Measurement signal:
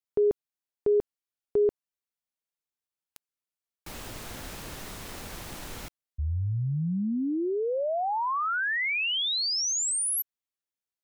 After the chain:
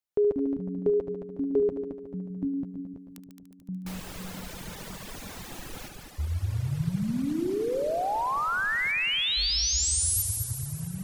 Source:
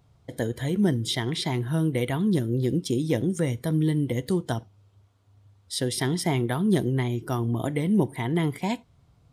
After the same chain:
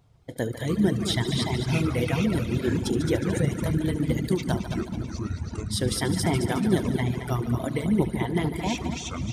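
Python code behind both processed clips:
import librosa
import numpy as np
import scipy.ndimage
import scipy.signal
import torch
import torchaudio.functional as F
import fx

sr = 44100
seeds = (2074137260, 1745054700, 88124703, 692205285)

y = fx.echo_heads(x, sr, ms=73, heads='all three', feedback_pct=65, wet_db=-9)
y = fx.echo_pitch(y, sr, ms=101, semitones=-7, count=2, db_per_echo=-6.0)
y = fx.dereverb_blind(y, sr, rt60_s=1.4)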